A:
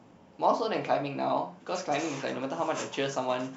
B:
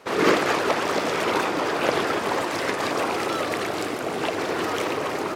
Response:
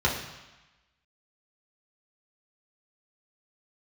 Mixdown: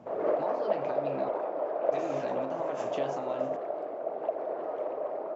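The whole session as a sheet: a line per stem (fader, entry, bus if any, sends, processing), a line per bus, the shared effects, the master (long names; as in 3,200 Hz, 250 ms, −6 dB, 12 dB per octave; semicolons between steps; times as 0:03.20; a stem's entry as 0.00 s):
+2.0 dB, 0.00 s, muted 0:01.29–0:01.92, no send, downward compressor, threshold −35 dBFS, peak gain reduction 15 dB
+2.0 dB, 0.00 s, no send, resonant band-pass 620 Hz, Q 5.5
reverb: not used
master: high-shelf EQ 2,200 Hz −11 dB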